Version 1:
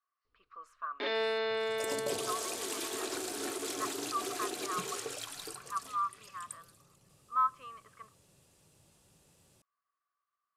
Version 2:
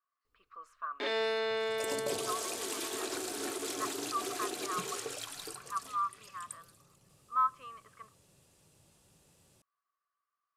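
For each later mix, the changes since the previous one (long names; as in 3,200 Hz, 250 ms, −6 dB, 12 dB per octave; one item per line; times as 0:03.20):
first sound: remove low-pass filter 5,100 Hz 24 dB per octave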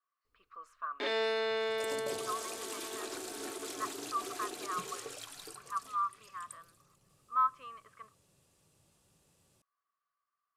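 second sound −4.5 dB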